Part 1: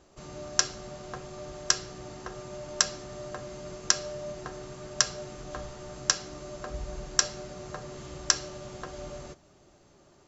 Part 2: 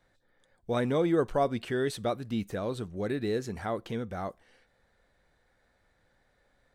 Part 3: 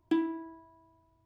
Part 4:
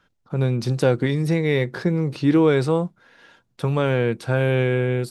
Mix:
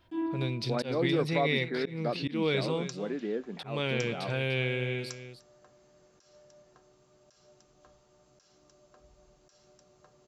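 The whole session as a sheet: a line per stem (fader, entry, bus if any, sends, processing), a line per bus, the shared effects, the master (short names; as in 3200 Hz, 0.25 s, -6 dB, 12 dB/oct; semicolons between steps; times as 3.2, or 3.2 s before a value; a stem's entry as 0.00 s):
-20.0 dB, 2.30 s, no send, echo send -22.5 dB, low shelf 140 Hz -7 dB
-2.0 dB, 0.00 s, no send, no echo send, Chebyshev band-pass 170–2400 Hz, order 5
+3.0 dB, 0.00 s, no send, echo send -15 dB, dry
-12.0 dB, 0.00 s, no send, echo send -12 dB, band shelf 3100 Hz +13 dB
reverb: off
echo: echo 0.299 s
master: bell 1800 Hz -4 dB 0.69 oct; auto swell 0.152 s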